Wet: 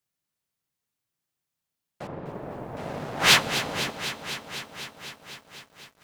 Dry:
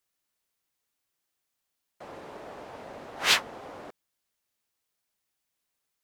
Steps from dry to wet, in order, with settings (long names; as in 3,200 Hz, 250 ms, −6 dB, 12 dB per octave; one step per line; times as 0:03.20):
parametric band 140 Hz +12.5 dB 1.3 octaves
leveller curve on the samples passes 2
0:02.07–0:02.77: head-to-tape spacing loss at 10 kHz 43 dB
four-comb reverb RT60 3.2 s, combs from 32 ms, DRR 19 dB
feedback echo at a low word length 251 ms, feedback 80%, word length 9 bits, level −11 dB